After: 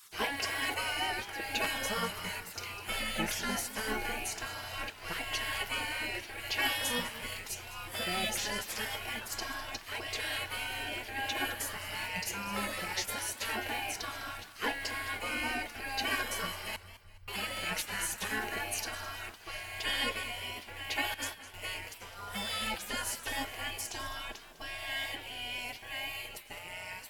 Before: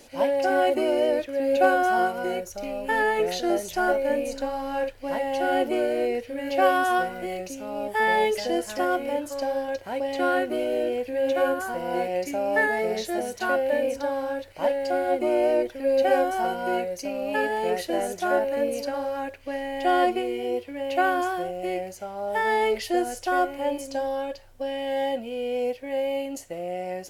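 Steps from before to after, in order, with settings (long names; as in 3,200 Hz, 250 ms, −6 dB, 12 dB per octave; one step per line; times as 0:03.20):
gate on every frequency bin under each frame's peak −20 dB weak
0:16.76–0:17.28: inverse Chebyshev band-stop filter 600–8,100 Hz, stop band 80 dB
0:21.14–0:21.54: noise gate −42 dBFS, range −14 dB
feedback echo with a swinging delay time 207 ms, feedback 40%, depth 116 cents, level −15 dB
level +5.5 dB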